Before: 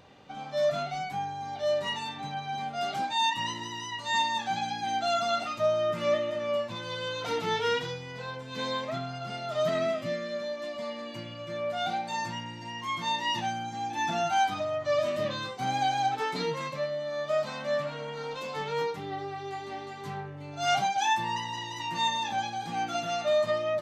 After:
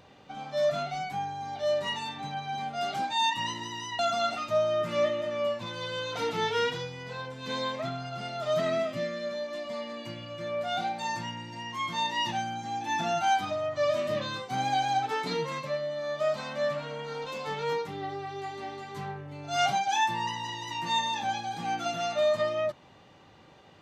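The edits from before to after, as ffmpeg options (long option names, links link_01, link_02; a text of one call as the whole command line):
ffmpeg -i in.wav -filter_complex "[0:a]asplit=2[link_01][link_02];[link_01]atrim=end=3.992[link_03];[link_02]atrim=start=5.078[link_04];[link_03][link_04]acrossfade=duration=0.004:curve1=hsin:curve2=hsin" out.wav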